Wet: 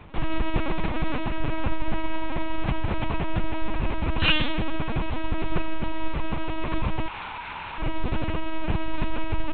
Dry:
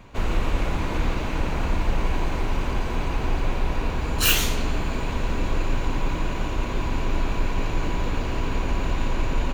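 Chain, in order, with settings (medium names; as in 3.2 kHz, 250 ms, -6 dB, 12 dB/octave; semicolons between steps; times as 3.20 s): octave divider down 1 oct, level -1 dB; 7.06–7.80 s: steep high-pass 670 Hz 72 dB/octave; LPC vocoder at 8 kHz pitch kept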